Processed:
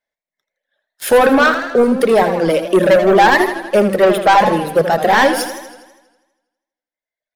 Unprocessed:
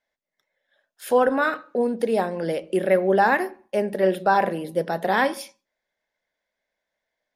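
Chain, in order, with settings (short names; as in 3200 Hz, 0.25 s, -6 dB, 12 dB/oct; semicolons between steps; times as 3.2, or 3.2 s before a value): sample leveller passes 3; reverb removal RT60 1.6 s; warbling echo 81 ms, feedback 62%, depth 119 cents, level -9.5 dB; gain +3 dB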